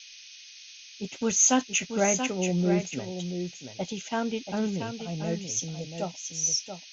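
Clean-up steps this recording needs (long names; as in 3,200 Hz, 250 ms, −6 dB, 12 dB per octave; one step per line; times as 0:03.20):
notch filter 2,500 Hz, Q 30
noise reduction from a noise print 25 dB
echo removal 681 ms −8 dB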